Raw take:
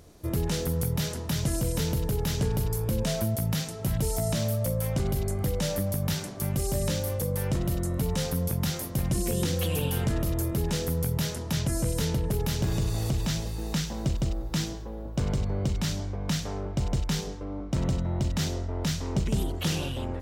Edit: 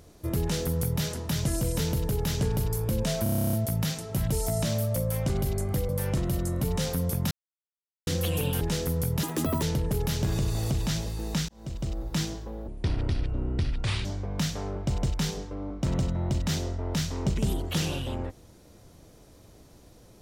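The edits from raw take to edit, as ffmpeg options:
-filter_complex "[0:a]asplit=20[a][b][c][d][e][f][g][h][i][j][k][l][m][n][o][p][q][r][s][t];[a]atrim=end=3.262[u];[b]atrim=start=3.228:end=3.262[v];[c]atrim=start=3.228:end=3.262[w];[d]atrim=start=3.228:end=3.262[x];[e]atrim=start=3.228:end=3.262[y];[f]atrim=start=3.228:end=3.262[z];[g]atrim=start=3.228:end=3.262[aa];[h]atrim=start=3.228:end=3.262[ab];[i]atrim=start=3.228:end=3.262[ac];[j]atrim=start=3.228:end=3.262[ad];[k]atrim=start=3.228:end=5.592[ae];[l]atrim=start=7.268:end=8.69,asetpts=PTS-STARTPTS,afade=t=out:st=1.418:d=0.004:c=hsin[af];[m]atrim=start=8.69:end=9.45,asetpts=PTS-STARTPTS,volume=0[ag];[n]atrim=start=9.45:end=9.992,asetpts=PTS-STARTPTS,afade=t=in:d=0.004:c=hsin[ah];[o]atrim=start=10.618:end=11.244[ai];[p]atrim=start=11.24:end=12.02,asetpts=PTS-STARTPTS,asetrate=86877,aresample=44100[aj];[q]atrim=start=12.016:end=13.88,asetpts=PTS-STARTPTS,afade=t=out:st=1.86:d=0.004:c=hsin[ak];[r]atrim=start=13.88:end=15.074,asetpts=PTS-STARTPTS,afade=t=in:d=0.58[al];[s]atrim=start=15.07:end=15.95,asetpts=PTS-STARTPTS,asetrate=28224,aresample=44100[am];[t]atrim=start=15.946[an];[u][v]acrossfade=d=0.004:c1=hsin:c2=hsin[ao];[ao][w]acrossfade=d=0.004:c1=hsin:c2=hsin[ap];[ap][x]acrossfade=d=0.004:c1=hsin:c2=hsin[aq];[aq][y]acrossfade=d=0.004:c1=hsin:c2=hsin[ar];[ar][z]acrossfade=d=0.004:c1=hsin:c2=hsin[as];[as][aa]acrossfade=d=0.004:c1=hsin:c2=hsin[at];[at][ab]acrossfade=d=0.004:c1=hsin:c2=hsin[au];[au][ac]acrossfade=d=0.004:c1=hsin:c2=hsin[av];[av][ad]acrossfade=d=0.004:c1=hsin:c2=hsin[aw];[aw][ae]acrossfade=d=0.004:c1=hsin:c2=hsin[ax];[af][ag][ah]concat=n=3:v=0:a=1[ay];[ax][ay]acrossfade=d=0.004:c1=hsin:c2=hsin[az];[az][ai]acrossfade=d=0.004:c1=hsin:c2=hsin[ba];[ba][aj]acrossfade=d=0.004:c1=hsin:c2=hsin[bb];[ak][al]concat=n=2:v=0:a=1[bc];[bb][bc]acrossfade=d=0.004:c1=hsin:c2=hsin[bd];[bd][am]acrossfade=d=0.004:c1=hsin:c2=hsin[be];[be][an]acrossfade=d=0.004:c1=hsin:c2=hsin"

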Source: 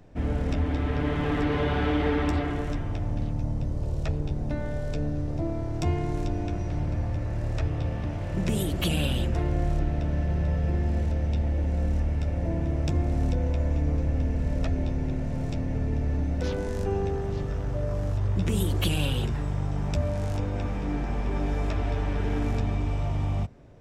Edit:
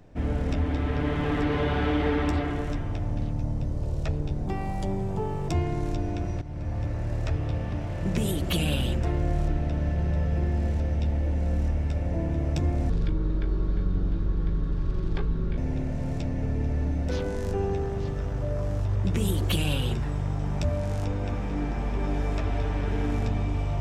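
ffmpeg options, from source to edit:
-filter_complex "[0:a]asplit=6[a][b][c][d][e][f];[a]atrim=end=4.474[g];[b]atrim=start=4.47:end=5.8,asetpts=PTS-STARTPTS,asetrate=57771,aresample=44100,atrim=end_sample=44773,asetpts=PTS-STARTPTS[h];[c]atrim=start=5.796:end=6.73,asetpts=PTS-STARTPTS,afade=t=out:st=0.93:d=0.004:c=hsin:silence=0.199526[i];[d]atrim=start=6.73:end=13.214,asetpts=PTS-STARTPTS,afade=t=in:d=0.4:silence=0.199526[j];[e]atrim=start=13.21:end=14.9,asetpts=PTS-STARTPTS,asetrate=27783,aresample=44100[k];[f]atrim=start=14.896[l];[g][h]acrossfade=d=0.004:c1=hsin:c2=hsin[m];[i][j]concat=n=2:v=0:a=1[n];[m][n]acrossfade=d=0.004:c1=hsin:c2=hsin[o];[o][k]acrossfade=d=0.004:c1=hsin:c2=hsin[p];[p][l]acrossfade=d=0.004:c1=hsin:c2=hsin"

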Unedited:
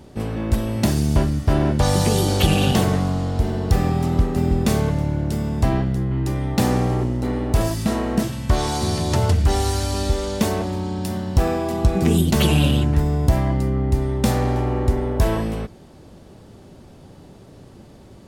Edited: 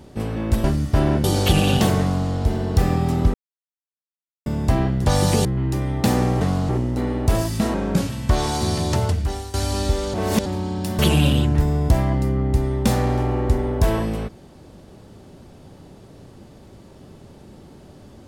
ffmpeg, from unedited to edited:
-filter_complex "[0:a]asplit=15[a][b][c][d][e][f][g][h][i][j][k][l][m][n][o];[a]atrim=end=0.642[p];[b]atrim=start=1.178:end=1.782[q];[c]atrim=start=2.178:end=4.28,asetpts=PTS-STARTPTS,afade=t=out:st=2.098:d=0.004:c=hsin[r];[d]atrim=start=4.28:end=5.4,asetpts=PTS-STARTPTS,volume=0[s];[e]atrim=start=5.4:end=5.992,asetpts=PTS-STARTPTS,afade=t=in:d=0.004:c=hsin[t];[f]atrim=start=1.778:end=2.182[u];[g]atrim=start=5.988:end=6.952[v];[h]atrim=start=2.928:end=3.212[w];[i]atrim=start=6.948:end=8.004[x];[j]atrim=start=8:end=8.3,asetpts=PTS-STARTPTS,asetrate=37044,aresample=44100[y];[k]atrim=start=8.296:end=9.74,asetpts=PTS-STARTPTS,afade=t=out:st=0.754:d=0.69:silence=0.141254[z];[l]atrim=start=9.74:end=10.342,asetpts=PTS-STARTPTS,afade=t=in:d=0.004:c=hsin:silence=0.141254[aa];[m]atrim=start=10.338:end=10.662,asetpts=PTS-STARTPTS,areverse[ab];[n]atrim=start=10.658:end=11.192[ac];[o]atrim=start=12.368[ad];[p][q]acrossfade=d=0.004:c1=hsin:c2=hsin[ae];[r][s][t]concat=n=3:v=0:a=1[af];[ae][af]acrossfade=d=0.004:c1=hsin:c2=hsin[ag];[ag][u]acrossfade=d=0.004:c1=hsin:c2=hsin[ah];[ah][v]acrossfade=d=0.004:c1=hsin:c2=hsin[ai];[ai][w]acrossfade=d=0.004:c1=hsin:c2=hsin[aj];[aj][x]acrossfade=d=0.004:c1=hsin:c2=hsin[ak];[ak][y]acrossfade=d=0.004:c1=hsin:c2=hsin[al];[z][aa]concat=n=2:v=0:a=1[am];[al][am]acrossfade=d=0.004:c1=hsin:c2=hsin[an];[an][ab]acrossfade=d=0.004:c1=hsin:c2=hsin[ao];[ao][ac]acrossfade=d=0.004:c1=hsin:c2=hsin[ap];[ap][ad]acrossfade=d=0.004:c1=hsin:c2=hsin"

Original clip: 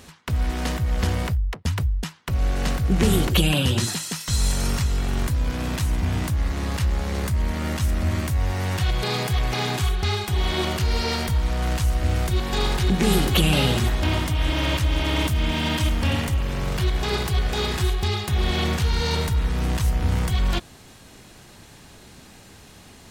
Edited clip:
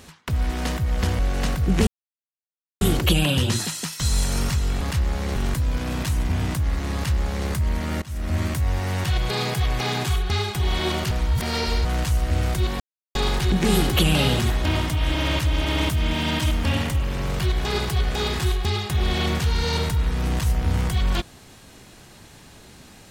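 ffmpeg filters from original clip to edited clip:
-filter_complex "[0:a]asplit=9[a][b][c][d][e][f][g][h][i];[a]atrim=end=1.192[j];[b]atrim=start=2.408:end=3.09,asetpts=PTS-STARTPTS,afade=t=out:st=0.678:d=0.004:c=hsin,apad=pad_dur=0.94[k];[c]atrim=start=3.09:end=5.092,asetpts=PTS-STARTPTS,afade=t=in:d=0.004:c=hsin[l];[d]atrim=start=6.668:end=7.222[m];[e]atrim=start=5.088:end=7.75,asetpts=PTS-STARTPTS,afade=t=out:st=2.658:d=0.004:c=hsin:silence=0.0794328[n];[f]atrim=start=7.75:end=10.842,asetpts=PTS-STARTPTS,afade=t=in:d=0.35:silence=0.0794328[o];[g]atrim=start=10.838:end=11.582,asetpts=PTS-STARTPTS,areverse[p];[h]atrim=start=11.578:end=12.53,asetpts=PTS-STARTPTS,afade=t=out:st=0.948:d=0.004:c=hsin,apad=pad_dur=0.35[q];[i]atrim=start=12.53,asetpts=PTS-STARTPTS,afade=t=in:d=0.004:c=hsin[r];[k][l]concat=n=2:v=0:a=1[s];[j][s]acrossfade=d=0.004:c1=hsin:c2=hsin[t];[t][m]acrossfade=d=0.004:c1=hsin:c2=hsin[u];[n][o]concat=n=2:v=0:a=1[v];[u][v]acrossfade=d=0.004:c1=hsin:c2=hsin[w];[w][p]acrossfade=d=0.004:c1=hsin:c2=hsin[x];[q][r]concat=n=2:v=0:a=1[y];[x][y]acrossfade=d=0.004:c1=hsin:c2=hsin"

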